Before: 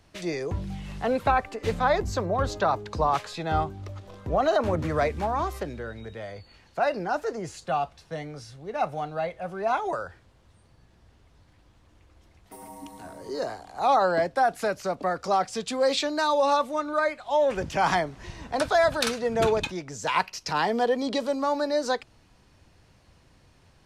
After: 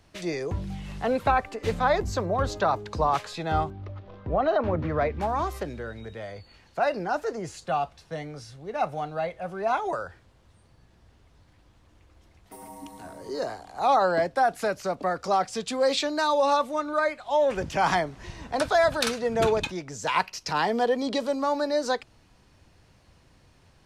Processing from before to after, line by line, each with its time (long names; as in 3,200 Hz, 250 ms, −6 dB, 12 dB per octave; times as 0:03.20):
0:03.70–0:05.21: high-frequency loss of the air 260 metres